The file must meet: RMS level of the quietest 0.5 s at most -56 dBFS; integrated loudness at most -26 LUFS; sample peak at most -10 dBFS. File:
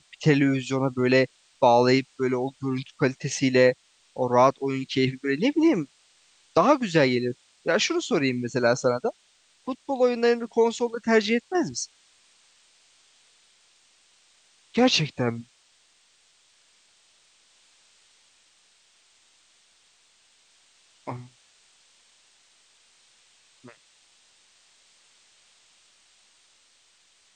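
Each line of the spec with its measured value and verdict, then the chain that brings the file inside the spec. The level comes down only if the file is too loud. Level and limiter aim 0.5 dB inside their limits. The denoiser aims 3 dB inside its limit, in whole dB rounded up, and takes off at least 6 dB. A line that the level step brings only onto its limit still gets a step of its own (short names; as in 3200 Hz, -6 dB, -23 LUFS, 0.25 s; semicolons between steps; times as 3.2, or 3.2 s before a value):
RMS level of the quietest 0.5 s -62 dBFS: OK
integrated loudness -23.5 LUFS: fail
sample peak -6.0 dBFS: fail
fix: gain -3 dB; limiter -10.5 dBFS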